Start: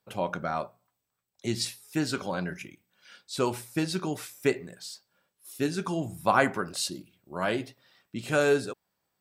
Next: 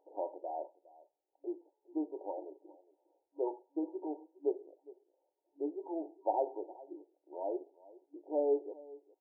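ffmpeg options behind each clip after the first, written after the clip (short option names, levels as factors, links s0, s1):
-af "acompressor=mode=upward:threshold=0.00447:ratio=2.5,aecho=1:1:411:0.0944,afftfilt=real='re*between(b*sr/4096,290,950)':imag='im*between(b*sr/4096,290,950)':win_size=4096:overlap=0.75,volume=0.473"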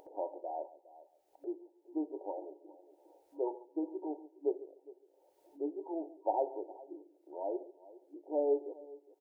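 -filter_complex "[0:a]asplit=2[s0][s1];[s1]adelay=141,lowpass=f=800:p=1,volume=0.158,asplit=2[s2][s3];[s3]adelay=141,lowpass=f=800:p=1,volume=0.21[s4];[s0][s2][s4]amix=inputs=3:normalize=0,acompressor=mode=upward:threshold=0.00355:ratio=2.5"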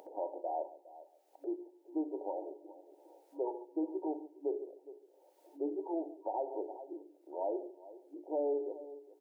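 -af "highpass=f=190:w=0.5412,highpass=f=190:w=1.3066,bandreject=f=60:t=h:w=6,bandreject=f=120:t=h:w=6,bandreject=f=180:t=h:w=6,bandreject=f=240:t=h:w=6,bandreject=f=300:t=h:w=6,bandreject=f=360:t=h:w=6,bandreject=f=420:t=h:w=6,alimiter=level_in=2:limit=0.0631:level=0:latency=1:release=123,volume=0.501,volume=1.5"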